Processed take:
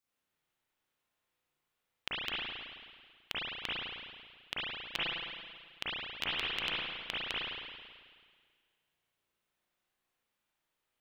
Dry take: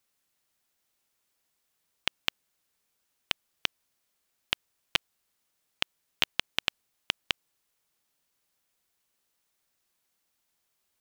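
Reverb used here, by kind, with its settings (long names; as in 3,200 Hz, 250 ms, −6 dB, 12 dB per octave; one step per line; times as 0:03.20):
spring reverb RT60 1.8 s, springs 34/54 ms, chirp 60 ms, DRR −9.5 dB
level −11.5 dB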